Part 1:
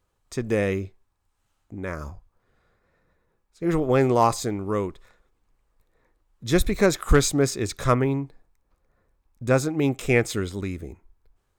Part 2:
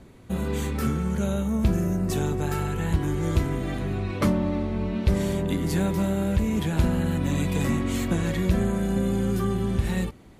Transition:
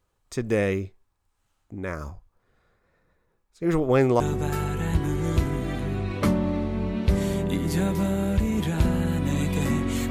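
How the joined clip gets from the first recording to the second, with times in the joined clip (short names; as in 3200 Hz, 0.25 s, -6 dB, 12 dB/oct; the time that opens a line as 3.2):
part 1
4.2 switch to part 2 from 2.19 s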